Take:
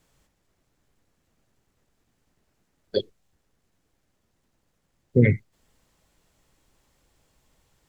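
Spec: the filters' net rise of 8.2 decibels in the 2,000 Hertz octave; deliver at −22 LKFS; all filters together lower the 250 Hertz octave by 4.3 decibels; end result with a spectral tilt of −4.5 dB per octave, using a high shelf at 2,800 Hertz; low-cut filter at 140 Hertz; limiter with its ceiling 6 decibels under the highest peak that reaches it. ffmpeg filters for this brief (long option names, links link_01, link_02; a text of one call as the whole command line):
ffmpeg -i in.wav -af "highpass=140,equalizer=frequency=250:width_type=o:gain=-4.5,equalizer=frequency=2000:width_type=o:gain=7.5,highshelf=frequency=2800:gain=3,volume=5.5dB,alimiter=limit=-5dB:level=0:latency=1" out.wav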